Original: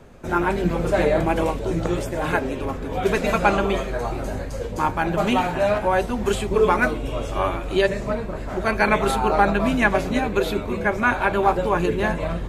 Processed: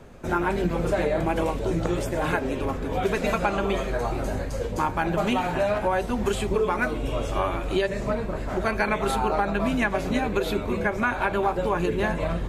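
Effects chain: compressor, threshold -20 dBFS, peak gain reduction 9 dB

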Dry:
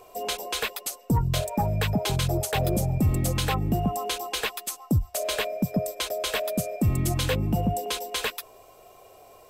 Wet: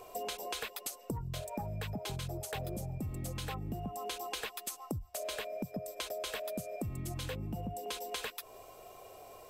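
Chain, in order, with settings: compressor 12:1, threshold -35 dBFS, peak gain reduction 17 dB; gain -1 dB

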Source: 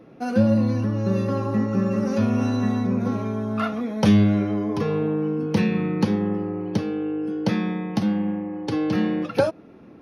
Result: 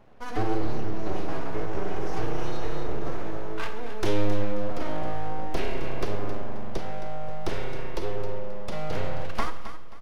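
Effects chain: full-wave rectifier; feedback echo 0.267 s, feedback 31%, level -11.5 dB; Schroeder reverb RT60 0.93 s, combs from 31 ms, DRR 10 dB; gain -5.5 dB

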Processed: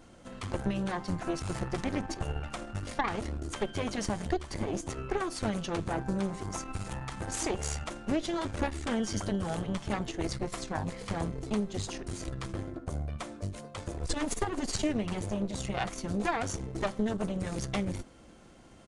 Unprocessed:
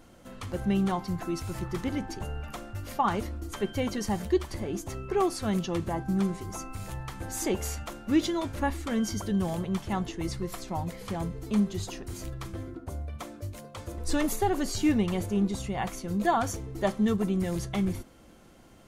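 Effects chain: compressor 6:1, threshold -28 dBFS, peak gain reduction 9.5 dB; added harmonics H 4 -9 dB, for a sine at -18.5 dBFS; downsampling 22050 Hz

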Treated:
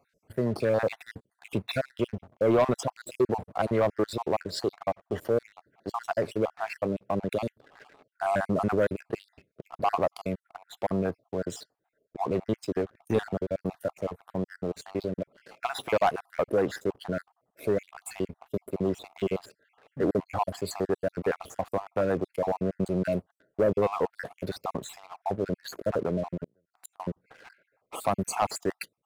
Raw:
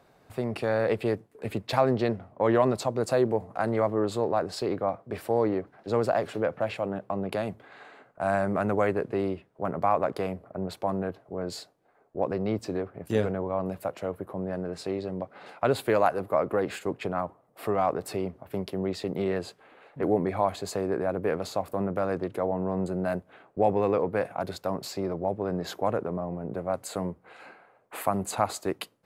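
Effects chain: random spectral dropouts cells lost 54%; 26.44–27 flipped gate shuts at -32 dBFS, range -30 dB; sample leveller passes 2; gain -4 dB

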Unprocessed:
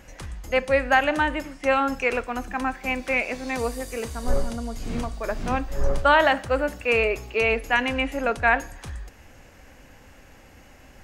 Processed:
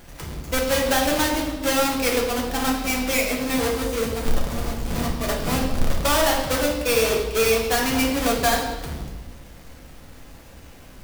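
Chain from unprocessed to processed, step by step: half-waves squared off; high shelf 4900 Hz +6.5 dB; compressor 4:1, threshold -16 dBFS, peak gain reduction 7 dB; reverb RT60 1.2 s, pre-delay 6 ms, DRR -2 dB; gain -5 dB

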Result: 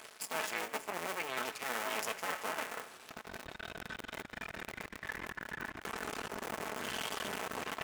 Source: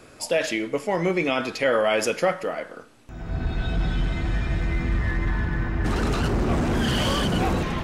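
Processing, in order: cycle switcher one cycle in 2, muted; reverse; compressor 6:1, threshold -34 dBFS, peak gain reduction 15 dB; reverse; comb 4.6 ms, depth 37%; half-wave rectifier; frequency-shifting echo 0.167 s, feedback 59%, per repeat -42 Hz, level -18.5 dB; dynamic EQ 4200 Hz, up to -6 dB, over -60 dBFS, Q 1.3; HPF 1100 Hz 6 dB/oct; gain +8.5 dB

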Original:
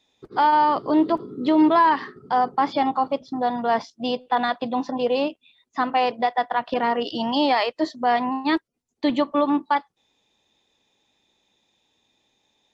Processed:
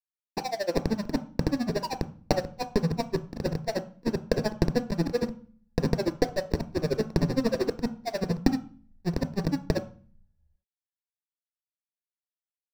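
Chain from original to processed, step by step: repeated pitch sweeps -10.5 st, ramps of 0.366 s; high shelf 5000 Hz -7.5 dB; Schmitt trigger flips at -25 dBFS; tremolo 13 Hz, depth 82%; power-law curve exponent 3; reverb RT60 0.45 s, pre-delay 3 ms, DRR 10 dB; gain +3 dB

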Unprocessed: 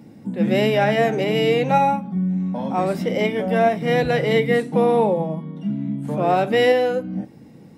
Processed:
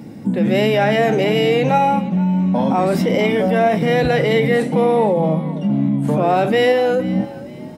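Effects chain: in parallel at +0.5 dB: negative-ratio compressor -25 dBFS, ratio -1; on the sum: frequency-shifting echo 0.465 s, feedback 33%, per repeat +58 Hz, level -18 dB

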